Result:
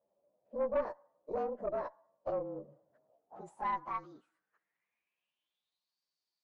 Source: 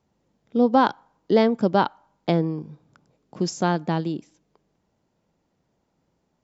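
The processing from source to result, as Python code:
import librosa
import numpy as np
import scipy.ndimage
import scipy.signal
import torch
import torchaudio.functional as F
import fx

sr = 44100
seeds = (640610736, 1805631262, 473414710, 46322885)

p1 = fx.partial_stretch(x, sr, pct=111)
p2 = fx.over_compress(p1, sr, threshold_db=-31.0, ratio=-1.0)
p3 = p1 + (p2 * librosa.db_to_amplitude(3.0))
p4 = fx.filter_sweep_bandpass(p3, sr, from_hz=590.0, to_hz=4600.0, start_s=3.0, end_s=5.99, q=8.0)
p5 = fx.tube_stage(p4, sr, drive_db=23.0, bias=0.55)
y = p5 * librosa.db_to_amplitude(-1.0)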